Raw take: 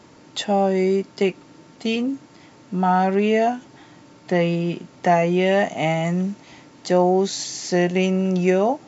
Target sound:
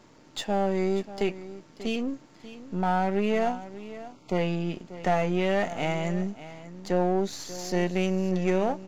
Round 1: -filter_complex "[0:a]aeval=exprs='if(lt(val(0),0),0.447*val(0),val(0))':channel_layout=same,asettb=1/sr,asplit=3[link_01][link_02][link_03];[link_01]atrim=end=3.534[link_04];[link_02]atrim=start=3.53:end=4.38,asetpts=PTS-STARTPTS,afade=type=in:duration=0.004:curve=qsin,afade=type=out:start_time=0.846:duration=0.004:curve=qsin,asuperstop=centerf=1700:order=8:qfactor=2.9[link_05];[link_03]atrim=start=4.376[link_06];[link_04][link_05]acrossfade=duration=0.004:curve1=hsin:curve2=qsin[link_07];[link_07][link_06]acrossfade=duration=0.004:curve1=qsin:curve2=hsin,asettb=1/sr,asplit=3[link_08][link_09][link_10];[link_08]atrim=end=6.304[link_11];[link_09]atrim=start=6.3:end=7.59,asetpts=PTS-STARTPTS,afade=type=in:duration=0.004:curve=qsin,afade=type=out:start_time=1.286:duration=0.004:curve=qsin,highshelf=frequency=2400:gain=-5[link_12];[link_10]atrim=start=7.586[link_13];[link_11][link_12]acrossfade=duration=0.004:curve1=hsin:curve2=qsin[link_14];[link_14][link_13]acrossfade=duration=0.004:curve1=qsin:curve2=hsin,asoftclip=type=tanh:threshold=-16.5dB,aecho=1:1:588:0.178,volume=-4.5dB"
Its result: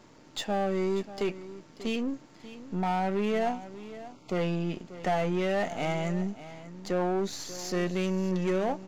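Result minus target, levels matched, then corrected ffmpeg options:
soft clipping: distortion +13 dB
-filter_complex "[0:a]aeval=exprs='if(lt(val(0),0),0.447*val(0),val(0))':channel_layout=same,asettb=1/sr,asplit=3[link_01][link_02][link_03];[link_01]atrim=end=3.534[link_04];[link_02]atrim=start=3.53:end=4.38,asetpts=PTS-STARTPTS,afade=type=in:duration=0.004:curve=qsin,afade=type=out:start_time=0.846:duration=0.004:curve=qsin,asuperstop=centerf=1700:order=8:qfactor=2.9[link_05];[link_03]atrim=start=4.376[link_06];[link_04][link_05]acrossfade=duration=0.004:curve1=hsin:curve2=qsin[link_07];[link_07][link_06]acrossfade=duration=0.004:curve1=qsin:curve2=hsin,asettb=1/sr,asplit=3[link_08][link_09][link_10];[link_08]atrim=end=6.304[link_11];[link_09]atrim=start=6.3:end=7.59,asetpts=PTS-STARTPTS,afade=type=in:duration=0.004:curve=qsin,afade=type=out:start_time=1.286:duration=0.004:curve=qsin,highshelf=frequency=2400:gain=-5[link_12];[link_10]atrim=start=7.586[link_13];[link_11][link_12]acrossfade=duration=0.004:curve1=hsin:curve2=qsin[link_14];[link_14][link_13]acrossfade=duration=0.004:curve1=qsin:curve2=hsin,asoftclip=type=tanh:threshold=-7dB,aecho=1:1:588:0.178,volume=-4.5dB"

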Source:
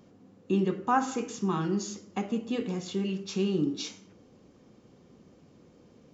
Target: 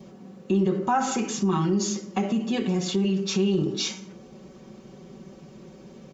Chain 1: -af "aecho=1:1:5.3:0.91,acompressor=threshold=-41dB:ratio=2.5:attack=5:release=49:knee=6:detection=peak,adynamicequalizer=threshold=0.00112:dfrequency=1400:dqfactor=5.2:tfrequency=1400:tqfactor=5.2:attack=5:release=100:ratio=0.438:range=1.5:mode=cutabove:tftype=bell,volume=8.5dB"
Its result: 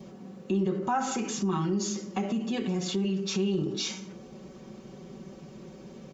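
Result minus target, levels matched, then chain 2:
downward compressor: peak gain reduction +5 dB
-af "aecho=1:1:5.3:0.91,acompressor=threshold=-33dB:ratio=2.5:attack=5:release=49:knee=6:detection=peak,adynamicequalizer=threshold=0.00112:dfrequency=1400:dqfactor=5.2:tfrequency=1400:tqfactor=5.2:attack=5:release=100:ratio=0.438:range=1.5:mode=cutabove:tftype=bell,volume=8.5dB"

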